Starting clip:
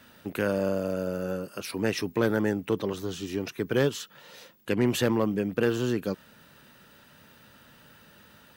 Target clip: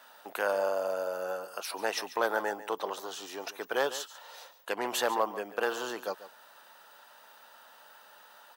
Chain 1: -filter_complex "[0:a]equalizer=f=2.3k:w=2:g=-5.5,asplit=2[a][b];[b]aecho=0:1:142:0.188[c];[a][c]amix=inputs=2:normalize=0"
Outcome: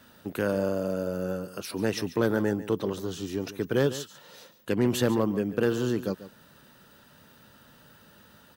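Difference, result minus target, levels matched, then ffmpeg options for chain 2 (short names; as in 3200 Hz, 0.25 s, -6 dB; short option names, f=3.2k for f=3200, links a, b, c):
1000 Hz band -10.0 dB
-filter_complex "[0:a]highpass=f=780:t=q:w=2.4,equalizer=f=2.3k:w=2:g=-5.5,asplit=2[a][b];[b]aecho=0:1:142:0.188[c];[a][c]amix=inputs=2:normalize=0"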